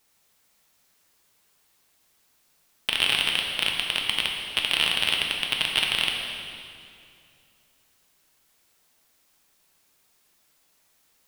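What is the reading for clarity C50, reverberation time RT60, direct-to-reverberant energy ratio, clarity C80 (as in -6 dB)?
2.0 dB, 2.5 s, 0.0 dB, 3.5 dB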